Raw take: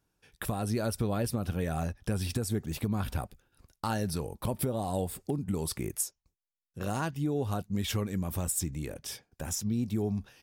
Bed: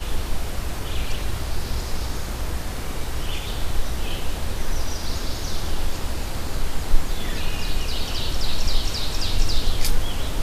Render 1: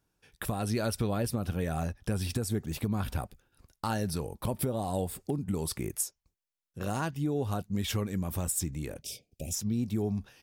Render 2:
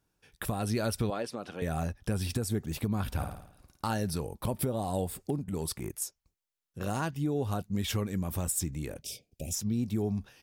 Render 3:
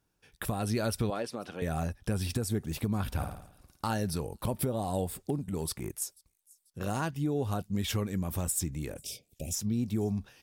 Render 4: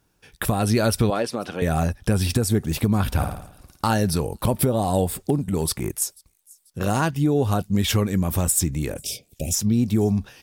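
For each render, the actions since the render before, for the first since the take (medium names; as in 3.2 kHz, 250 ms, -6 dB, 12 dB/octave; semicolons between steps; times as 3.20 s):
0.60–1.11 s: peaking EQ 2.9 kHz +4.5 dB 2.1 oct; 9.02–9.54 s: elliptic band-stop 650–2400 Hz
1.10–1.62 s: band-pass 350–6100 Hz; 3.14–3.86 s: flutter echo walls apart 9.3 m, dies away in 0.66 s; 5.36–6.02 s: transient shaper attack -9 dB, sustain -5 dB
feedback echo behind a high-pass 490 ms, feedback 44%, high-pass 5.5 kHz, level -23.5 dB
trim +10.5 dB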